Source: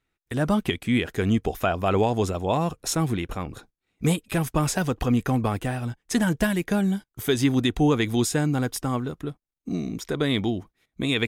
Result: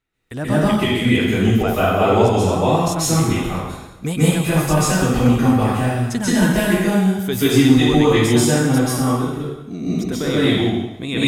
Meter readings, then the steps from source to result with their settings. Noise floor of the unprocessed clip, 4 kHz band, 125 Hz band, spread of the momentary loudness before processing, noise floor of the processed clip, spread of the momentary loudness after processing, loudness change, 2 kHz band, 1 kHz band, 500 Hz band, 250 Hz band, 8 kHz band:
-83 dBFS, +7.5 dB, +8.0 dB, 9 LU, -36 dBFS, 10 LU, +8.0 dB, +7.5 dB, +8.0 dB, +8.5 dB, +8.0 dB, +8.5 dB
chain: plate-style reverb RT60 0.98 s, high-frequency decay 0.95×, pre-delay 0.12 s, DRR -9.5 dB; gain -2 dB

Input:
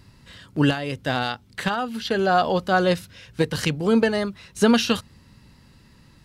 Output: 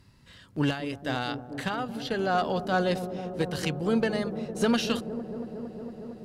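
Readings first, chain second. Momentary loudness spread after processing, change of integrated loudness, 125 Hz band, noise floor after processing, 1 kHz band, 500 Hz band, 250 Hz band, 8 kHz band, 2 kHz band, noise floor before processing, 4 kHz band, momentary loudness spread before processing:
11 LU, -7.0 dB, -5.5 dB, -55 dBFS, -6.5 dB, -6.0 dB, -6.0 dB, -7.0 dB, -7.0 dB, -54 dBFS, -7.0 dB, 9 LU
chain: added harmonics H 2 -13 dB, 4 -19 dB, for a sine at -6.5 dBFS; dark delay 0.229 s, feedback 84%, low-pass 610 Hz, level -9.5 dB; gain -7 dB

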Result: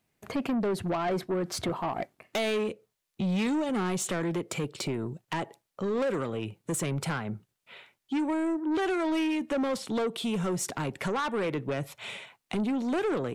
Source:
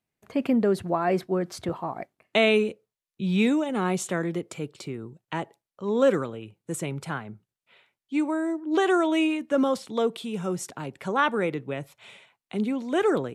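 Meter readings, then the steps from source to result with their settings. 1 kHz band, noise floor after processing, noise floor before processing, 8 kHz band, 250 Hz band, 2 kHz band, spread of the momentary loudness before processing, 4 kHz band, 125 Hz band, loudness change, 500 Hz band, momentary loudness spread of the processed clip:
-4.0 dB, -82 dBFS, under -85 dBFS, +2.5 dB, -3.5 dB, -5.0 dB, 14 LU, -2.5 dB, -0.5 dB, -4.0 dB, -5.0 dB, 8 LU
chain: compressor 2.5:1, threshold -34 dBFS, peak gain reduction 12.5 dB; soft clip -33.5 dBFS, distortion -10 dB; gain +9 dB

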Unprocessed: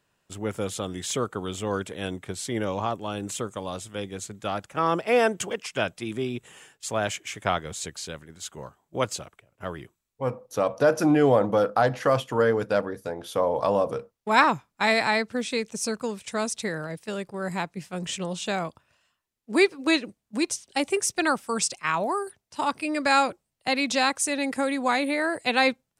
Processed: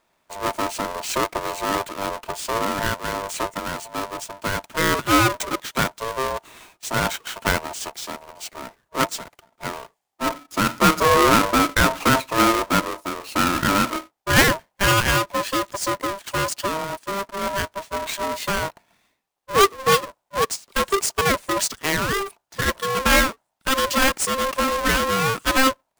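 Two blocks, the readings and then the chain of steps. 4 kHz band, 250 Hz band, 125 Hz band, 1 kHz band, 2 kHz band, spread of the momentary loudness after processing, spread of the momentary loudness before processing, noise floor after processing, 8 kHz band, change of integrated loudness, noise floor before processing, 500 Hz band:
+7.5 dB, +2.5 dB, +5.5 dB, +5.5 dB, +6.0 dB, 13 LU, 13 LU, -75 dBFS, +6.0 dB, +4.5 dB, -79 dBFS, +0.5 dB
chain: half-waves squared off; ring modulator 790 Hz; gain +3 dB

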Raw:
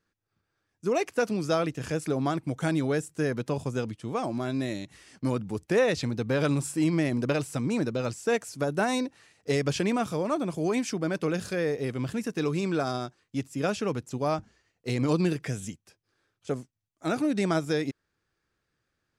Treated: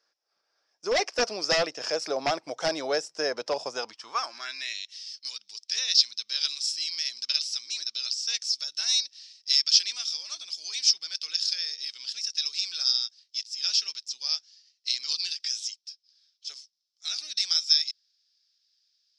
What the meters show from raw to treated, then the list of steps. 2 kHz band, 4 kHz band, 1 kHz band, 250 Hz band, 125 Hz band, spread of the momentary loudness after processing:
-1.5 dB, +17.0 dB, -3.0 dB, under -15 dB, under -20 dB, 14 LU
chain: high-pass sweep 620 Hz -> 3800 Hz, 3.66–5.01; wavefolder -19.5 dBFS; synth low-pass 5300 Hz, resonance Q 10

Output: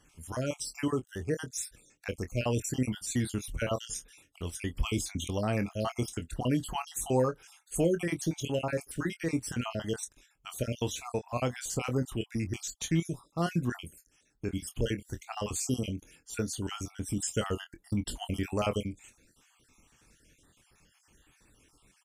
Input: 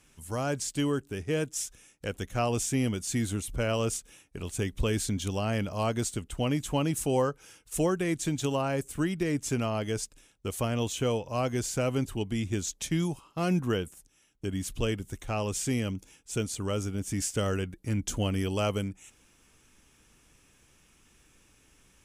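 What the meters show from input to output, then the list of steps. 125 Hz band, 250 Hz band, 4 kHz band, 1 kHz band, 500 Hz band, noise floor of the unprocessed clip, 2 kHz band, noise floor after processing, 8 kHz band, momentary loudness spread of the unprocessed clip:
-3.0 dB, -2.5 dB, -3.0 dB, -3.0 dB, -3.0 dB, -63 dBFS, -2.5 dB, -69 dBFS, -2.5 dB, 8 LU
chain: random spectral dropouts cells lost 50%; doubler 24 ms -10 dB

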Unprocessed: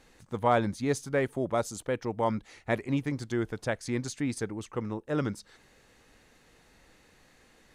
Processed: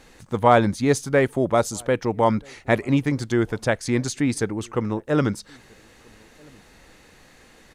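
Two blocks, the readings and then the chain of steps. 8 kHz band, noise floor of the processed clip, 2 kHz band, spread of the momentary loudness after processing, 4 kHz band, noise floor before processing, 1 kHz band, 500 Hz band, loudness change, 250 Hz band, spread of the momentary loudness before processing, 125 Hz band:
+9.0 dB, -52 dBFS, +9.0 dB, 9 LU, +9.0 dB, -62 dBFS, +9.0 dB, +9.0 dB, +9.0 dB, +9.0 dB, 9 LU, +9.0 dB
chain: outdoor echo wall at 220 m, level -29 dB; gain +9 dB

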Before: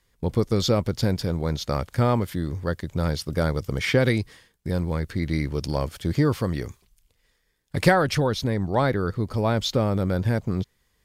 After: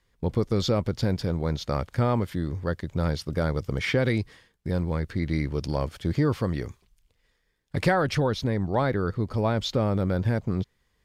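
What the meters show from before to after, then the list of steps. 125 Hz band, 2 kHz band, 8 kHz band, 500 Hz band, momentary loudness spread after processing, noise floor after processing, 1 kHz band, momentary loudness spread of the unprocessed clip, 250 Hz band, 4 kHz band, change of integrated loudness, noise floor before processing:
-2.0 dB, -3.5 dB, -6.5 dB, -2.5 dB, 6 LU, -71 dBFS, -3.0 dB, 8 LU, -2.0 dB, -4.0 dB, -2.0 dB, -69 dBFS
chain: high shelf 6900 Hz -10.5 dB; in parallel at +1.5 dB: limiter -14 dBFS, peak gain reduction 10.5 dB; on the sum: gain -8 dB

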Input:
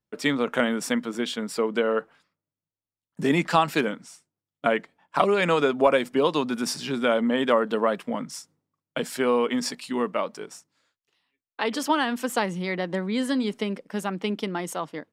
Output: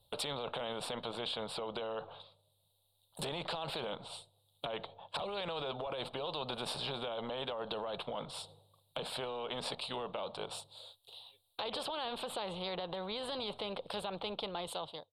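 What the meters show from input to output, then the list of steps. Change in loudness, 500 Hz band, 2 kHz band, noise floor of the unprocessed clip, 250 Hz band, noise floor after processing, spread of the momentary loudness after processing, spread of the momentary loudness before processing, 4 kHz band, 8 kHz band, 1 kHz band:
-14.5 dB, -15.0 dB, -17.5 dB, under -85 dBFS, -21.0 dB, -76 dBFS, 8 LU, 10 LU, -5.5 dB, -13.0 dB, -14.0 dB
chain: ending faded out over 0.94 s; EQ curve 100 Hz 0 dB, 270 Hz -25 dB, 520 Hz +2 dB, 840 Hz 0 dB, 1900 Hz -29 dB, 3800 Hz +12 dB, 6000 Hz -27 dB, 8800 Hz +1 dB; treble ducked by the level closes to 1900 Hz, closed at -34.5 dBFS; limiter -32.5 dBFS, peak gain reduction 24.5 dB; spectral compressor 2:1; gain +8.5 dB

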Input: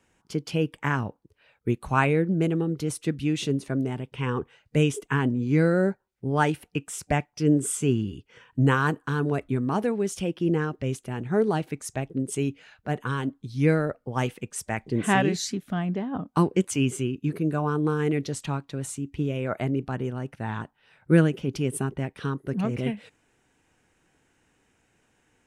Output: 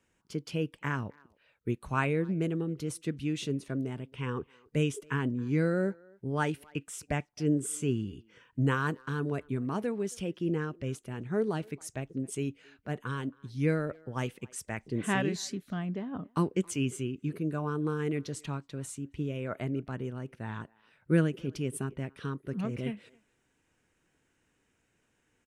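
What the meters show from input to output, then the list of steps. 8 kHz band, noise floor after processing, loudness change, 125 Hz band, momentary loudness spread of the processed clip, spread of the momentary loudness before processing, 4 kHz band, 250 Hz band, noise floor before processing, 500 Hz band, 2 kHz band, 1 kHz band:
-6.5 dB, -74 dBFS, -6.5 dB, -6.5 dB, 10 LU, 10 LU, -6.5 dB, -6.5 dB, -69 dBFS, -7.0 dB, -6.5 dB, -8.5 dB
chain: bell 790 Hz -5.5 dB 0.34 oct; speakerphone echo 0.27 s, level -25 dB; gain -6.5 dB

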